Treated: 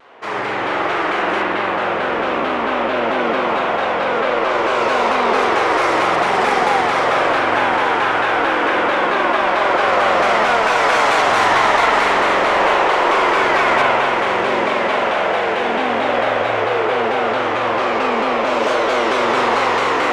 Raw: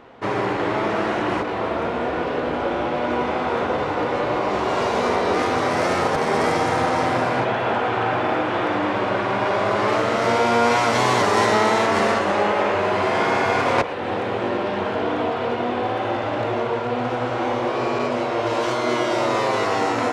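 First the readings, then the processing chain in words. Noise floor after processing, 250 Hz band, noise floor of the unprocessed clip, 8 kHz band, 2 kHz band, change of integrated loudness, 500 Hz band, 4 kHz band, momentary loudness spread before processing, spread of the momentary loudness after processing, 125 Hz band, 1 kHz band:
-20 dBFS, 0.0 dB, -25 dBFS, +1.5 dB, +8.0 dB, +5.0 dB, +3.5 dB, +6.0 dB, 6 LU, 5 LU, -5.5 dB, +6.0 dB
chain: tilt EQ +2 dB/octave; on a send: echo that smears into a reverb 1217 ms, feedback 64%, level -9 dB; on the sum: overdrive pedal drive 14 dB, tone 1.9 kHz, clips at -5 dBFS; peaking EQ 8.8 kHz +6 dB 1.9 oct; spring tank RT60 3.5 s, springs 45 ms, chirp 75 ms, DRR -6 dB; vibrato with a chosen wave saw down 4.5 Hz, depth 160 cents; trim -6.5 dB

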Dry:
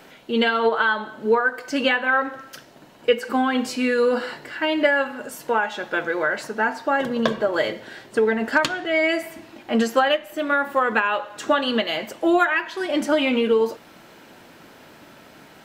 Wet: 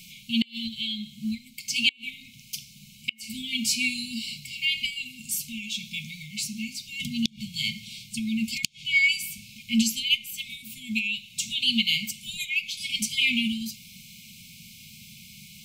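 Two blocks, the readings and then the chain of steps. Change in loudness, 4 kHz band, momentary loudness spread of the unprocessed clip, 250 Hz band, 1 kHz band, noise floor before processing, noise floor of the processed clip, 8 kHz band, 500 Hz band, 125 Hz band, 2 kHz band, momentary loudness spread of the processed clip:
-5.0 dB, +4.0 dB, 8 LU, -6.0 dB, under -40 dB, -48 dBFS, -51 dBFS, +9.0 dB, under -40 dB, +1.0 dB, -6.0 dB, 22 LU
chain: brick-wall FIR band-stop 230–2100 Hz; inverted gate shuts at -14 dBFS, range -30 dB; tone controls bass +1 dB, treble +7 dB; trim +3 dB

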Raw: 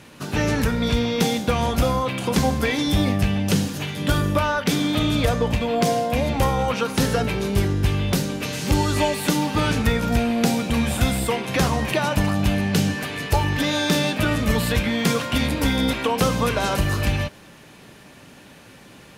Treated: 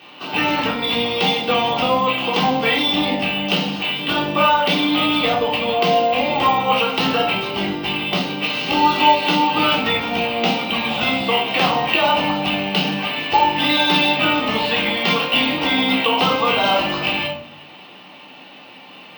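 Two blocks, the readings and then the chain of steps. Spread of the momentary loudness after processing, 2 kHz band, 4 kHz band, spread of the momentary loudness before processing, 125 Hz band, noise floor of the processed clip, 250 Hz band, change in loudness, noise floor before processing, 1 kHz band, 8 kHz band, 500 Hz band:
5 LU, +6.5 dB, +9.0 dB, 3 LU, -8.5 dB, -41 dBFS, -0.5 dB, +4.0 dB, -46 dBFS, +8.5 dB, -11.5 dB, +3.0 dB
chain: cabinet simulation 360–4400 Hz, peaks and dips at 400 Hz -6 dB, 860 Hz +4 dB, 1.6 kHz -8 dB, 2.9 kHz +9 dB; simulated room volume 480 m³, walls furnished, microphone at 3.6 m; careless resampling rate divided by 2×, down filtered, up hold; trim +1 dB

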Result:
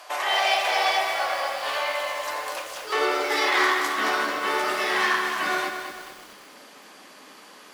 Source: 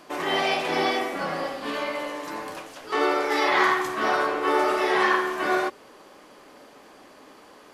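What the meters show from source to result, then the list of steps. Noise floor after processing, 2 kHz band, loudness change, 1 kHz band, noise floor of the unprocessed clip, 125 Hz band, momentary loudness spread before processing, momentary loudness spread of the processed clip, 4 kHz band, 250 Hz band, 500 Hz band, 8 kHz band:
-48 dBFS, +2.0 dB, +0.5 dB, 0.0 dB, -51 dBFS, under -10 dB, 11 LU, 10 LU, +4.5 dB, -6.0 dB, -3.0 dB, +6.5 dB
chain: Chebyshev shaper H 8 -29 dB, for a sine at -8.5 dBFS; in parallel at 0 dB: compression 6:1, threshold -32 dBFS, peak gain reduction 15 dB; on the sum: tilt shelf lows -7.5 dB, about 900 Hz; high-pass sweep 670 Hz -> 180 Hz, 2.12–4.62 s; bit-crushed delay 220 ms, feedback 55%, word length 6-bit, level -7 dB; trim -5.5 dB

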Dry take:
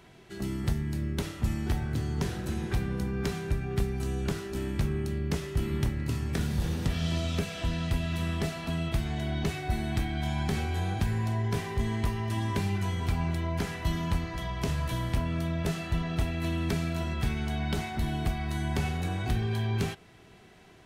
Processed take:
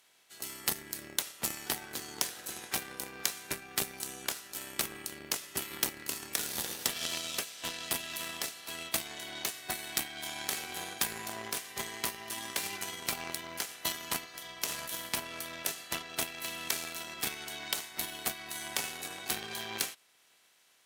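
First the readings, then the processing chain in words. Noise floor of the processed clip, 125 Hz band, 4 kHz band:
-66 dBFS, -25.5 dB, +4.5 dB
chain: spectral peaks clipped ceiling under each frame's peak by 16 dB; Chebyshev shaper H 3 -13 dB, 7 -33 dB, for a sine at -12 dBFS; RIAA curve recording

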